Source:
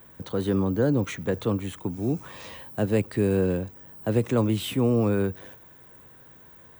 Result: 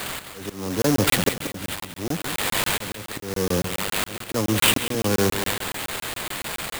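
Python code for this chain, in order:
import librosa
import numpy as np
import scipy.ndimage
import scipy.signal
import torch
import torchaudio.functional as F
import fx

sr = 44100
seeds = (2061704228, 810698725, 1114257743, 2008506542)

p1 = 10.0 ** (-26.5 / 20.0) * (np.abs((x / 10.0 ** (-26.5 / 20.0) + 3.0) % 4.0 - 2.0) - 1.0)
p2 = x + (p1 * librosa.db_to_amplitude(-4.0))
p3 = fx.auto_swell(p2, sr, attack_ms=700.0)
p4 = fx.bass_treble(p3, sr, bass_db=-4, treble_db=5)
p5 = fx.sample_hold(p4, sr, seeds[0], rate_hz=5900.0, jitter_pct=20)
p6 = fx.high_shelf(p5, sr, hz=4400.0, db=8.5)
p7 = p6 + fx.echo_feedback(p6, sr, ms=182, feedback_pct=48, wet_db=-11, dry=0)
p8 = fx.buffer_crackle(p7, sr, first_s=0.82, period_s=0.14, block=1024, kind='zero')
y = p8 * librosa.db_to_amplitude(9.0)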